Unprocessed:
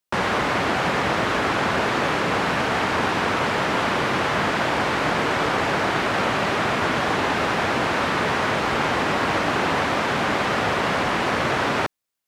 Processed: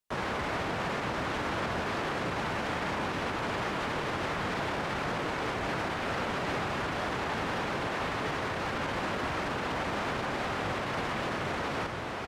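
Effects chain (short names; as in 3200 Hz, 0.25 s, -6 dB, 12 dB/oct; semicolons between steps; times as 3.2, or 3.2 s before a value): low shelf 63 Hz +11 dB; diffused feedback echo 0.503 s, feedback 48%, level -10 dB; harmoniser -7 st -4 dB, +3 st -9 dB; limiter -16.5 dBFS, peak gain reduction 11 dB; gain -7.5 dB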